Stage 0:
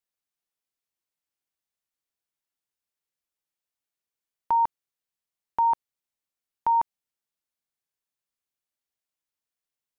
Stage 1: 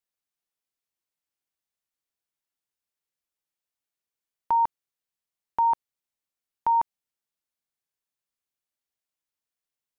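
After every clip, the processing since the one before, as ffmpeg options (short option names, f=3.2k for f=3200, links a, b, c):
-af anull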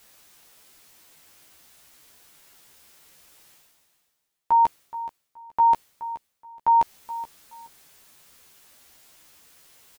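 -filter_complex "[0:a]areverse,acompressor=mode=upward:threshold=-30dB:ratio=2.5,areverse,asplit=2[a][b];[b]adelay=13,volume=-3.5dB[c];[a][c]amix=inputs=2:normalize=0,aecho=1:1:424|848:0.178|0.0409"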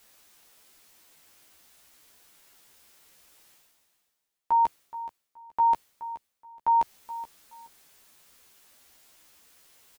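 -af "equalizer=f=120:t=o:w=0.42:g=-9.5,volume=-4dB"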